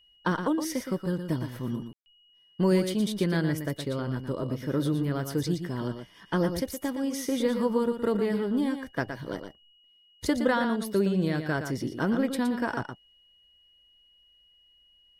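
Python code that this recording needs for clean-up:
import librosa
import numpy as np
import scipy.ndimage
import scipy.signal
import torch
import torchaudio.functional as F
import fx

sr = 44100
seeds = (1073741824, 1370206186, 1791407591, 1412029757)

y = fx.notch(x, sr, hz=2900.0, q=30.0)
y = fx.fix_ambience(y, sr, seeds[0], print_start_s=9.72, print_end_s=10.22, start_s=1.93, end_s=2.06)
y = fx.fix_echo_inverse(y, sr, delay_ms=117, level_db=-8.0)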